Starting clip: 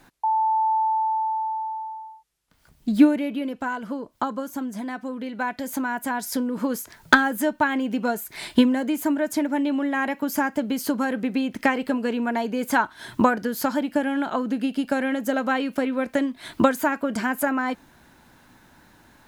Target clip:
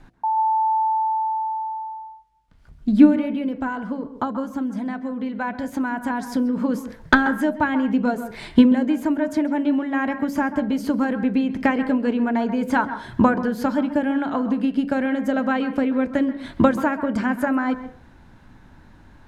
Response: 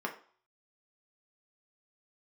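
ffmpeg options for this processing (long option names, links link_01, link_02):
-filter_complex "[0:a]aemphasis=mode=reproduction:type=bsi,bandreject=frequency=56.17:width_type=h:width=4,bandreject=frequency=112.34:width_type=h:width=4,bandreject=frequency=168.51:width_type=h:width=4,bandreject=frequency=224.68:width_type=h:width=4,bandreject=frequency=280.85:width_type=h:width=4,bandreject=frequency=337.02:width_type=h:width=4,bandreject=frequency=393.19:width_type=h:width=4,bandreject=frequency=449.36:width_type=h:width=4,bandreject=frequency=505.53:width_type=h:width=4,bandreject=frequency=561.7:width_type=h:width=4,bandreject=frequency=617.87:width_type=h:width=4,bandreject=frequency=674.04:width_type=h:width=4,bandreject=frequency=730.21:width_type=h:width=4,asplit=2[link_01][link_02];[1:a]atrim=start_sample=2205,adelay=133[link_03];[link_02][link_03]afir=irnorm=-1:irlink=0,volume=-16.5dB[link_04];[link_01][link_04]amix=inputs=2:normalize=0"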